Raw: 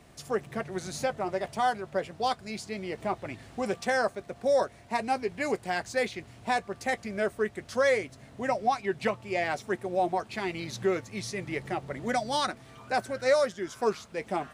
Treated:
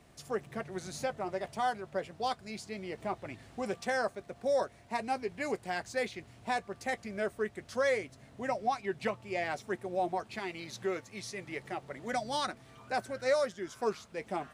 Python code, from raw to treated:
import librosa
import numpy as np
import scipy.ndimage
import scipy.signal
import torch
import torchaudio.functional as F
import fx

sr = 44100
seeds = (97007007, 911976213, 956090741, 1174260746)

y = fx.low_shelf(x, sr, hz=240.0, db=-7.5, at=(10.39, 12.13))
y = F.gain(torch.from_numpy(y), -5.0).numpy()